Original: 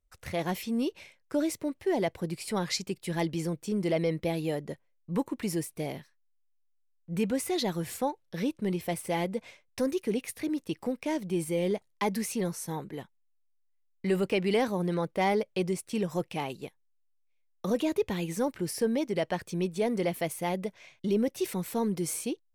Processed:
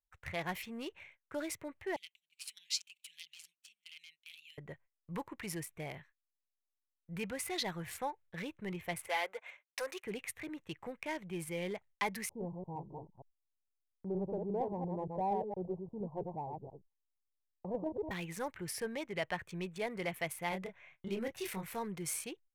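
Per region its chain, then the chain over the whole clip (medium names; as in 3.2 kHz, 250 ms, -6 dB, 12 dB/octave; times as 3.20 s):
1.96–4.58 s: elliptic high-pass 2.7 kHz, stop band 50 dB + delay 618 ms -21 dB
9.08–10.04 s: high-pass 460 Hz 24 dB/octave + waveshaping leveller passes 1
12.29–18.11 s: chunks repeated in reverse 116 ms, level -3.5 dB + steep low-pass 950 Hz 72 dB/octave
20.49–21.77 s: doubling 26 ms -4 dB + tape noise reduction on one side only decoder only
whole clip: local Wiener filter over 9 samples; graphic EQ 250/500/2000 Hz -12/-5/+5 dB; gate -57 dBFS, range -16 dB; trim -3.5 dB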